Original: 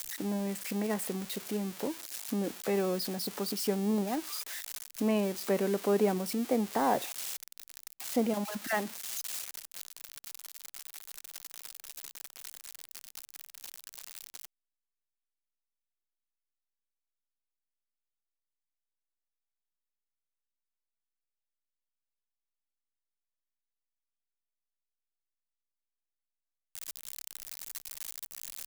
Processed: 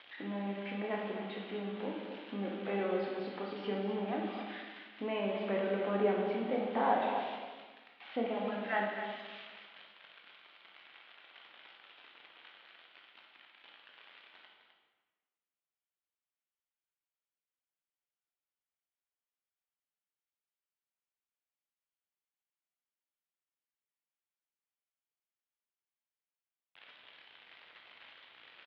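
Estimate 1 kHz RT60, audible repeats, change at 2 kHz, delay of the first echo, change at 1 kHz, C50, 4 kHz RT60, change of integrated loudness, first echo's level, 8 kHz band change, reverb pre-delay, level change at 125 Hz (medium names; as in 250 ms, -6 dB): 1.3 s, 1, 0.0 dB, 257 ms, +0.5 dB, 1.0 dB, 1.0 s, -2.0 dB, -9.0 dB, under -40 dB, 15 ms, no reading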